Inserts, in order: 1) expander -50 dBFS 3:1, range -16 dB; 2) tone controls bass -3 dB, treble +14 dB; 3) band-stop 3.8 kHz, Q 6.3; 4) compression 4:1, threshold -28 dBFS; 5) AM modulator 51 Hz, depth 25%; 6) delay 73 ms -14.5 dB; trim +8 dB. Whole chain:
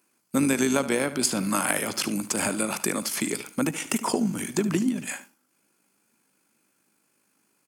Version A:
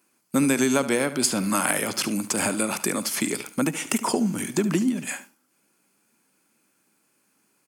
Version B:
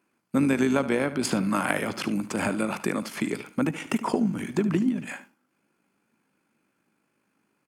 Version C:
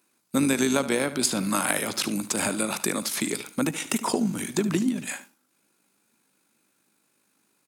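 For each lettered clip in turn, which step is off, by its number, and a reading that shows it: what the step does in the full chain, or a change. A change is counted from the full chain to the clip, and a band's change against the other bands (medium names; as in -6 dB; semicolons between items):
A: 5, loudness change +2.0 LU; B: 2, 8 kHz band -11.5 dB; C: 3, 4 kHz band +1.5 dB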